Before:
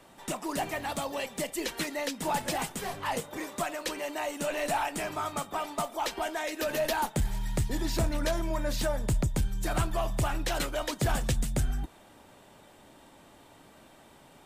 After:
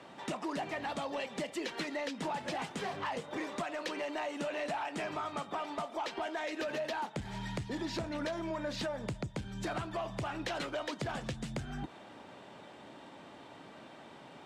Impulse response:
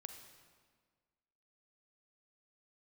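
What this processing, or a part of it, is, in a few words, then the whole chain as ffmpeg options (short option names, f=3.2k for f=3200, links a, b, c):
AM radio: -af "highpass=130,lowpass=4.4k,acompressor=threshold=-37dB:ratio=6,asoftclip=type=tanh:threshold=-31.5dB,volume=4dB"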